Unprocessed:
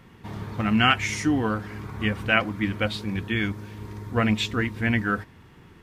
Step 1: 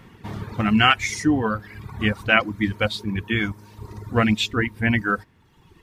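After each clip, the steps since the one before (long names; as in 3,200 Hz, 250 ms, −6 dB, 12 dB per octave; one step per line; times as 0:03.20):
reverb reduction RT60 1.3 s
level +4 dB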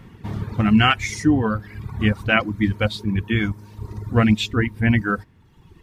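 low-shelf EQ 280 Hz +8 dB
level −1.5 dB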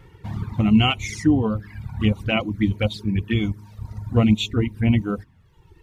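flanger swept by the level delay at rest 2.5 ms, full sweep at −17 dBFS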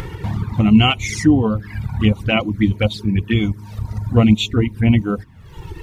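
upward compression, threshold −21 dBFS
level +4.5 dB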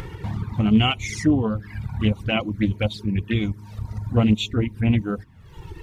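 highs frequency-modulated by the lows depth 0.21 ms
level −5.5 dB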